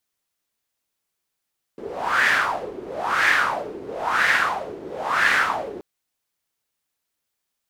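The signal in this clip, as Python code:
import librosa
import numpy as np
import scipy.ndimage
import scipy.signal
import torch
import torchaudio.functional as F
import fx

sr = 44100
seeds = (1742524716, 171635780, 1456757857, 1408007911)

y = fx.wind(sr, seeds[0], length_s=4.03, low_hz=370.0, high_hz=1800.0, q=4.9, gusts=4, swing_db=17.0)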